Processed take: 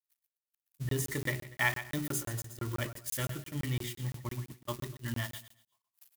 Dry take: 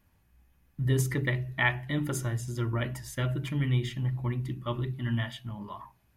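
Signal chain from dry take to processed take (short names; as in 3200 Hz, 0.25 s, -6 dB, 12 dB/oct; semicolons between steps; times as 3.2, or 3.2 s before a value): switching spikes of -27 dBFS; gate -31 dBFS, range -59 dB; low shelf 290 Hz -4.5 dB; on a send: feedback echo 0.121 s, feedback 24%, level -11 dB; on the sum: AGC gain up to 3.5 dB; crackling interface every 0.17 s, samples 1024, zero, from 0.38; gain -6.5 dB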